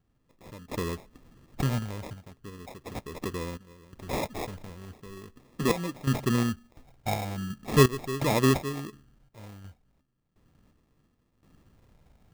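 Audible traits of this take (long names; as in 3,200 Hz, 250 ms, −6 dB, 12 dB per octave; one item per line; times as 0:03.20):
sample-and-hold tremolo 2.8 Hz, depth 90%
phaser sweep stages 8, 0.39 Hz, lowest notch 370–1,800 Hz
aliases and images of a low sample rate 1,500 Hz, jitter 0%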